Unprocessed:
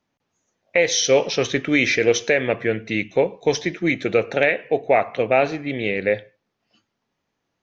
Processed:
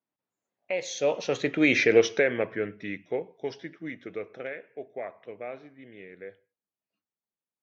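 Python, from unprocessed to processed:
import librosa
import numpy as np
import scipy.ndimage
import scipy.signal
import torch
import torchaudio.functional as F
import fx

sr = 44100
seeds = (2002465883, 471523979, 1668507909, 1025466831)

y = fx.doppler_pass(x, sr, speed_mps=24, closest_m=8.5, pass_at_s=1.84)
y = fx.highpass(y, sr, hz=180.0, slope=6)
y = fx.high_shelf(y, sr, hz=3000.0, db=-9.5)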